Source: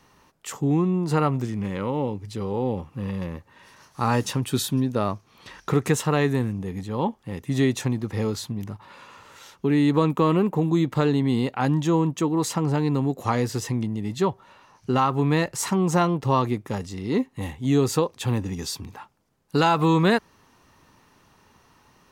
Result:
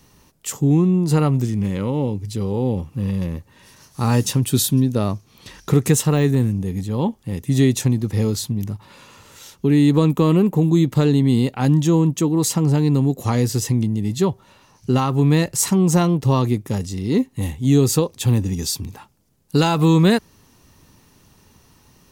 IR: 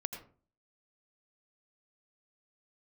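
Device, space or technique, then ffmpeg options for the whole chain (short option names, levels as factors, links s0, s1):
smiley-face EQ: -filter_complex "[0:a]lowshelf=f=200:g=6,equalizer=f=1200:t=o:w=2.1:g=-7,highshelf=f=5900:g=8.5,asettb=1/sr,asplit=3[s0][s1][s2];[s0]atrim=end=6.134[s3];[s1]atrim=start=6.13:end=7.17,asetpts=PTS-STARTPTS,afade=t=in:d=0.004:c=qsin,afade=t=out:st=1.036:d=0.004:c=qsin,deesser=0.85[s4];[s2]atrim=start=7.166[s5];[s3][s4]acrossfade=d=0.004:c1=hsin:c2=qsin[s6];[s6][s5]acrossfade=d=0.004:c1=qsin:c2=hsin,volume=1.58"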